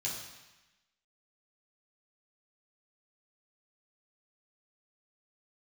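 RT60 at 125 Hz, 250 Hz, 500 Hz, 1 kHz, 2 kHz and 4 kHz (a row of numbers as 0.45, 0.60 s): 1.0, 1.1, 0.95, 1.1, 1.2, 1.1 s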